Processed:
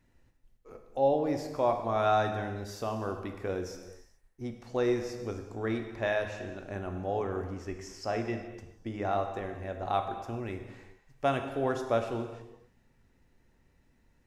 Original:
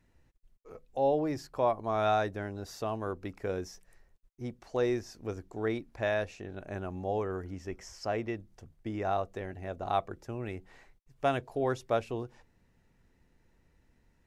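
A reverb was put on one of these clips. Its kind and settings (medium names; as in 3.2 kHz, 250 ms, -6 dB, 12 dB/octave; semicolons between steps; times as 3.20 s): gated-style reverb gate 450 ms falling, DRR 5 dB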